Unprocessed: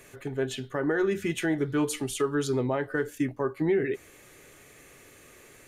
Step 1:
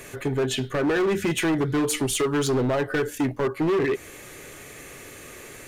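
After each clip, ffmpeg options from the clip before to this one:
-filter_complex "[0:a]asplit=2[s0][s1];[s1]acompressor=threshold=0.0251:ratio=6,volume=1[s2];[s0][s2]amix=inputs=2:normalize=0,asoftclip=type=hard:threshold=0.0631,volume=1.68"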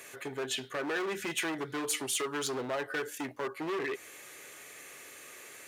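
-af "highpass=f=830:p=1,volume=0.562"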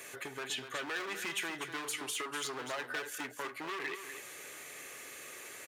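-filter_complex "[0:a]acrossover=split=930|2700[s0][s1][s2];[s0]acompressor=threshold=0.00447:ratio=4[s3];[s1]acompressor=threshold=0.0112:ratio=4[s4];[s2]acompressor=threshold=0.01:ratio=4[s5];[s3][s4][s5]amix=inputs=3:normalize=0,asplit=2[s6][s7];[s7]aecho=0:1:246:0.355[s8];[s6][s8]amix=inputs=2:normalize=0,volume=1.12"

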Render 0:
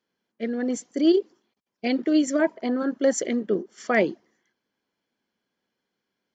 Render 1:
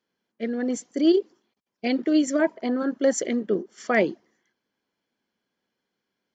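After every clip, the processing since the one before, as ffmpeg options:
-af anull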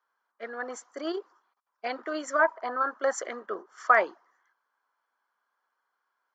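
-af "highpass=f=1200:t=q:w=1.8,highshelf=f=1700:t=q:w=1.5:g=-12.5,volume=1.88"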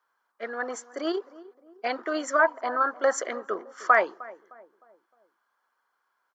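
-filter_complex "[0:a]asplit=2[s0][s1];[s1]alimiter=limit=0.15:level=0:latency=1:release=282,volume=0.841[s2];[s0][s2]amix=inputs=2:normalize=0,asplit=2[s3][s4];[s4]adelay=307,lowpass=f=890:p=1,volume=0.133,asplit=2[s5][s6];[s6]adelay=307,lowpass=f=890:p=1,volume=0.51,asplit=2[s7][s8];[s8]adelay=307,lowpass=f=890:p=1,volume=0.51,asplit=2[s9][s10];[s10]adelay=307,lowpass=f=890:p=1,volume=0.51[s11];[s3][s5][s7][s9][s11]amix=inputs=5:normalize=0,volume=0.841"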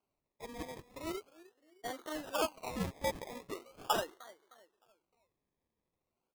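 -filter_complex "[0:a]acrossover=split=1800[s0][s1];[s0]flanger=delay=0.1:depth=5.8:regen=-53:speed=1.4:shape=triangular[s2];[s1]alimiter=level_in=1.88:limit=0.0631:level=0:latency=1:release=109,volume=0.531[s3];[s2][s3]amix=inputs=2:normalize=0,acrusher=samples=24:mix=1:aa=0.000001:lfo=1:lforange=14.4:lforate=0.4,volume=0.376"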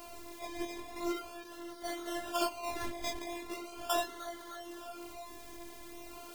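-af "aeval=exprs='val(0)+0.5*0.00794*sgn(val(0))':c=same,afftfilt=real='hypot(re,im)*cos(PI*b)':imag='0':win_size=512:overlap=0.75,flanger=delay=18.5:depth=4.4:speed=0.75,volume=2.37"

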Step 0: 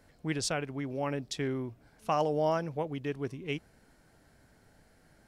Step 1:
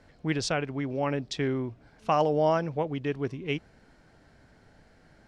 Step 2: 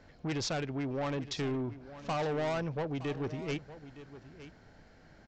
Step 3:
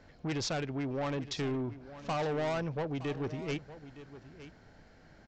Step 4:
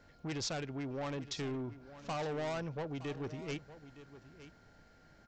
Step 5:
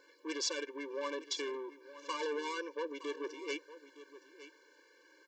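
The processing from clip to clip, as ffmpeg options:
-af "lowpass=5300,volume=1.68"
-af "aresample=16000,asoftclip=type=tanh:threshold=0.0316,aresample=44100,aecho=1:1:915:0.178"
-af anull
-af "aeval=exprs='val(0)+0.000708*sin(2*PI*1400*n/s)':c=same,crystalizer=i=1:c=0,volume=0.562"
-af "highpass=f=550:p=1,afftfilt=real='re*eq(mod(floor(b*sr/1024/300),2),1)':imag='im*eq(mod(floor(b*sr/1024/300),2),1)':win_size=1024:overlap=0.75,volume=2.24"

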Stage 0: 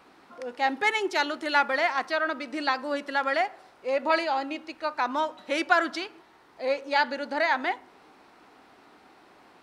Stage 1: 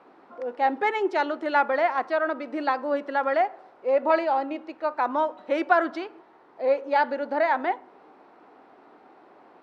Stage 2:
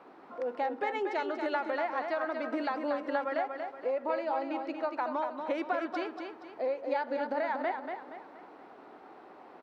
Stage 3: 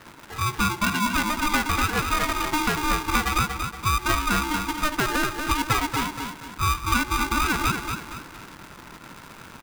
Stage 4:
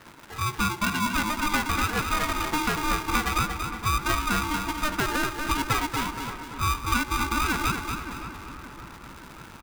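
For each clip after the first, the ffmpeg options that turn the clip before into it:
-af "bandpass=f=530:t=q:w=0.75:csg=0,volume=1.78"
-filter_complex "[0:a]acompressor=threshold=0.0316:ratio=6,asplit=2[s0][s1];[s1]aecho=0:1:236|472|708|944|1180:0.501|0.195|0.0762|0.0297|0.0116[s2];[s0][s2]amix=inputs=2:normalize=0"
-filter_complex "[0:a]asplit=2[s0][s1];[s1]acrusher=bits=7:mix=0:aa=0.000001,volume=0.631[s2];[s0][s2]amix=inputs=2:normalize=0,aeval=exprs='val(0)*sgn(sin(2*PI*610*n/s))':c=same,volume=1.68"
-filter_complex "[0:a]asplit=2[s0][s1];[s1]adelay=571,lowpass=f=1800:p=1,volume=0.282,asplit=2[s2][s3];[s3]adelay=571,lowpass=f=1800:p=1,volume=0.54,asplit=2[s4][s5];[s5]adelay=571,lowpass=f=1800:p=1,volume=0.54,asplit=2[s6][s7];[s7]adelay=571,lowpass=f=1800:p=1,volume=0.54,asplit=2[s8][s9];[s9]adelay=571,lowpass=f=1800:p=1,volume=0.54,asplit=2[s10][s11];[s11]adelay=571,lowpass=f=1800:p=1,volume=0.54[s12];[s0][s2][s4][s6][s8][s10][s12]amix=inputs=7:normalize=0,volume=0.75"

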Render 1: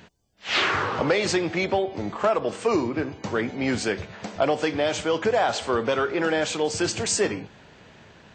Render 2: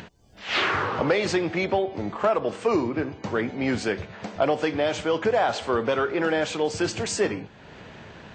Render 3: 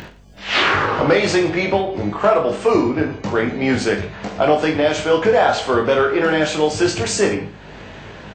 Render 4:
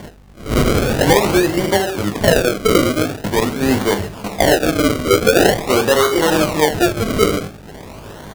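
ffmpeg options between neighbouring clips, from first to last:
-af "highshelf=f=5800:g=-10,acompressor=mode=upward:threshold=0.0178:ratio=2.5"
-filter_complex "[0:a]aeval=exprs='val(0)+0.00158*(sin(2*PI*50*n/s)+sin(2*PI*2*50*n/s)/2+sin(2*PI*3*50*n/s)/3+sin(2*PI*4*50*n/s)/4+sin(2*PI*5*50*n/s)/5)':c=same,asplit=2[s0][s1];[s1]aecho=0:1:20|45|76.25|115.3|164.1:0.631|0.398|0.251|0.158|0.1[s2];[s0][s2]amix=inputs=2:normalize=0,volume=1.88"
-af "acrusher=samples=34:mix=1:aa=0.000001:lfo=1:lforange=34:lforate=0.45,volume=1.26"

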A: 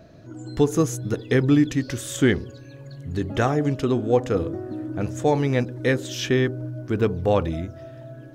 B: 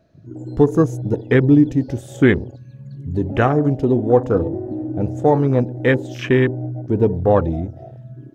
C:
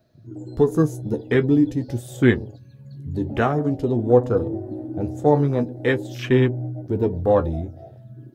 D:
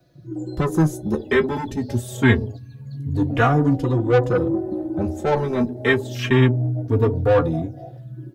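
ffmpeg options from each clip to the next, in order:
-af "afwtdn=0.0316,volume=1.88"
-filter_complex "[0:a]flanger=delay=8.1:depth=5.6:regen=41:speed=0.47:shape=sinusoidal,acrossover=split=510|2200[s0][s1][s2];[s2]aexciter=amount=2:drive=3.8:freq=3600[s3];[s0][s1][s3]amix=inputs=3:normalize=0"
-filter_complex "[0:a]acrossover=split=140|1000|4100[s0][s1][s2][s3];[s1]asoftclip=type=tanh:threshold=0.0944[s4];[s0][s4][s2][s3]amix=inputs=4:normalize=0,asplit=2[s5][s6];[s6]adelay=3.6,afreqshift=0.25[s7];[s5][s7]amix=inputs=2:normalize=1,volume=2.51"

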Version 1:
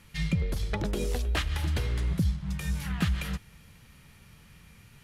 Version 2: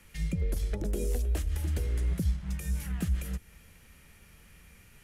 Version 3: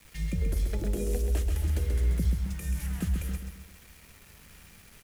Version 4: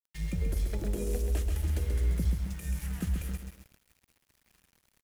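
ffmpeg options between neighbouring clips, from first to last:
-filter_complex "[0:a]equalizer=f=125:t=o:w=1:g=-11,equalizer=f=250:t=o:w=1:g=-3,equalizer=f=1000:t=o:w=1:g=-6,equalizer=f=4000:t=o:w=1:g=-7,acrossover=split=130|530|6000[s0][s1][s2][s3];[s2]acompressor=threshold=0.00282:ratio=6[s4];[s0][s1][s4][s3]amix=inputs=4:normalize=0,volume=1.33"
-af "acrusher=bits=8:mix=0:aa=0.000001,aecho=1:1:133|266|399|532|665:0.501|0.205|0.0842|0.0345|0.0142"
-af "aeval=exprs='sgn(val(0))*max(abs(val(0))-0.00398,0)':c=same,volume=0.841"

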